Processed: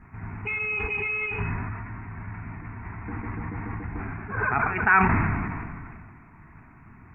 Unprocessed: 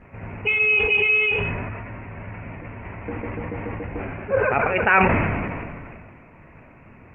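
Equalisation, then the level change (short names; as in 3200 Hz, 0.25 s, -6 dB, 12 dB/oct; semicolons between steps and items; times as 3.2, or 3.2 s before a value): fixed phaser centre 1300 Hz, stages 4; 0.0 dB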